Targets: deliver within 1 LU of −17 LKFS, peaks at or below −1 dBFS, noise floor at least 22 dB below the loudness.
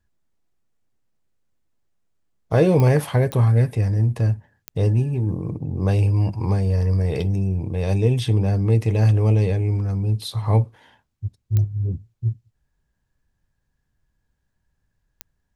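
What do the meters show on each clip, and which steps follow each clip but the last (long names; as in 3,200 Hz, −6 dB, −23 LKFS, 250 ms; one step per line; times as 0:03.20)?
number of clicks 5; integrated loudness −21.0 LKFS; sample peak −6.0 dBFS; target loudness −17.0 LKFS
→ click removal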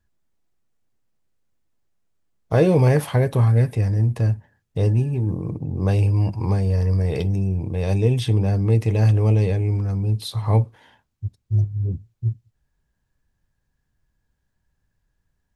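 number of clicks 0; integrated loudness −21.0 LKFS; sample peak −6.0 dBFS; target loudness −17.0 LKFS
→ level +4 dB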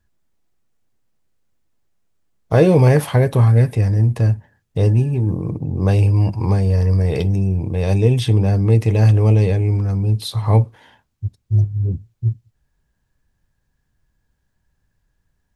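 integrated loudness −17.0 LKFS; sample peak −2.0 dBFS; background noise floor −70 dBFS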